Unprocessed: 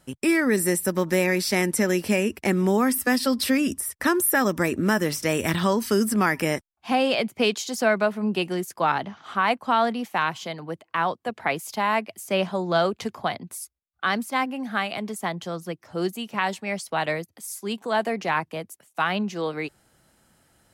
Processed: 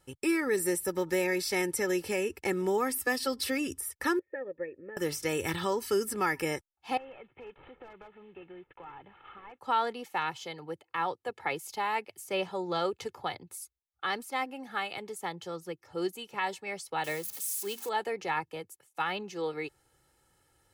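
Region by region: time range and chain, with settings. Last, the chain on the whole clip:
0:04.19–0:04.97: formant resonators in series e + parametric band 230 Hz +6 dB 1.8 octaves + expander for the loud parts, over −42 dBFS
0:06.97–0:09.61: variable-slope delta modulation 16 kbit/s + gain into a clipping stage and back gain 15.5 dB + downward compressor 4 to 1, threshold −40 dBFS
0:17.04–0:17.89: spike at every zero crossing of −25.5 dBFS + mains-hum notches 60/120/180/240 Hz
whole clip: notch filter 1,500 Hz, Q 23; comb filter 2.3 ms, depth 68%; level −8.5 dB

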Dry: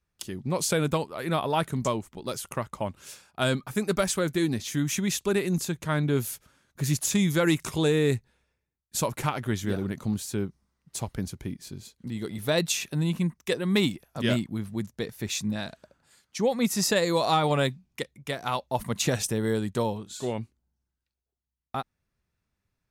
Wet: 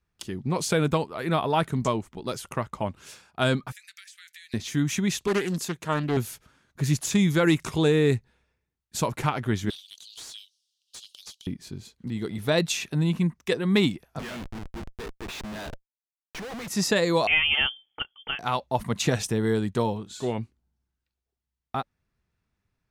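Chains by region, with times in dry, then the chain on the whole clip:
0:03.72–0:04.54: elliptic high-pass filter 1,800 Hz, stop band 60 dB + downward compressor 16 to 1, threshold −43 dBFS
0:05.27–0:06.17: high-pass filter 280 Hz 6 dB per octave + high-shelf EQ 8,100 Hz +6.5 dB + highs frequency-modulated by the lows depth 0.34 ms
0:09.70–0:11.47: Butterworth high-pass 3,000 Hz 72 dB per octave + downward compressor 5 to 1, threshold −42 dBFS + mid-hump overdrive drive 21 dB, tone 4,200 Hz, clips at −27 dBFS
0:14.19–0:16.68: resonant band-pass 1,900 Hz, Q 0.52 + comparator with hysteresis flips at −44.5 dBFS
0:17.27–0:18.39: low-shelf EQ 140 Hz −6 dB + voice inversion scrambler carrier 3,300 Hz + notch filter 1,000 Hz, Q 5.2
whole clip: high-shelf EQ 7,300 Hz −10.5 dB; notch filter 560 Hz, Q 12; level +2.5 dB

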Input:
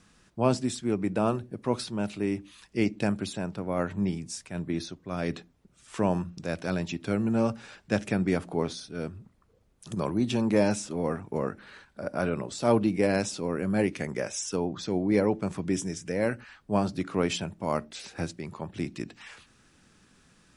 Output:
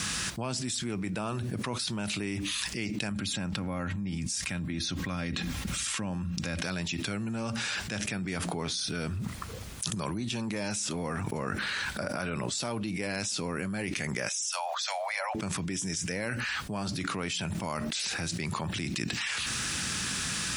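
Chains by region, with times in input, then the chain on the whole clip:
0:03.11–0:06.63: bass and treble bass +9 dB, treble −5 dB + comb filter 3.7 ms, depth 38% + one half of a high-frequency compander encoder only
0:14.29–0:15.35: Butterworth high-pass 580 Hz 96 dB per octave + multiband upward and downward expander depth 40%
whole clip: high-pass filter 63 Hz; guitar amp tone stack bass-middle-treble 5-5-5; envelope flattener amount 100%; level +2 dB

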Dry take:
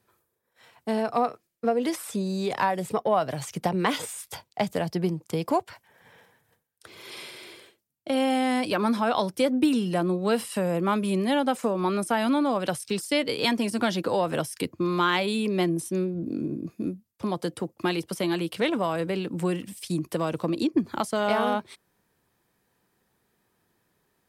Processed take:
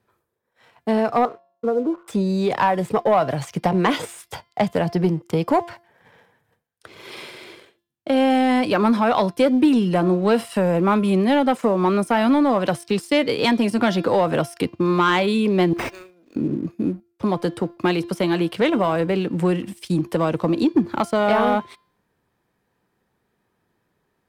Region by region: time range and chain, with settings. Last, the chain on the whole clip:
0:01.25–0:02.08: Chebyshev low-pass with heavy ripple 1,500 Hz, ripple 9 dB + hum removal 183.5 Hz, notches 6
0:15.73–0:16.36: high-pass filter 1,300 Hz + high-shelf EQ 8,700 Hz +8 dB + bad sample-rate conversion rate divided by 4×, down none, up hold
whole clip: high-shelf EQ 4,300 Hz −11.5 dB; hum removal 344.5 Hz, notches 16; leveller curve on the samples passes 1; level +4 dB

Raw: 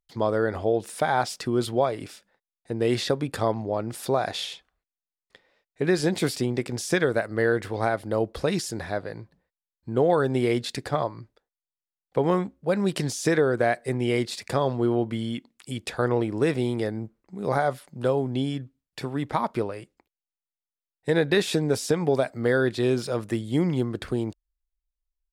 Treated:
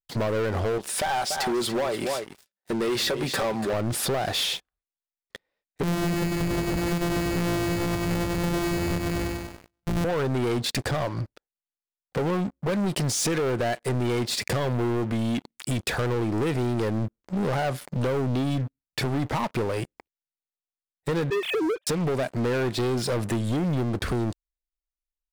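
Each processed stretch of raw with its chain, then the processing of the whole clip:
0:00.78–0:03.73: high-pass filter 410 Hz 6 dB per octave + comb filter 5.2 ms, depth 33% + single-tap delay 288 ms −14 dB
0:05.83–0:10.05: samples sorted by size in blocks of 256 samples + repeating echo 96 ms, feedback 56%, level −6 dB
0:21.30–0:21.87: three sine waves on the formant tracks + downward compressor 16 to 1, threshold −22 dBFS
whole clip: low-shelf EQ 170 Hz +5 dB; downward compressor 5 to 1, threshold −29 dBFS; leveller curve on the samples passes 5; level −5.5 dB

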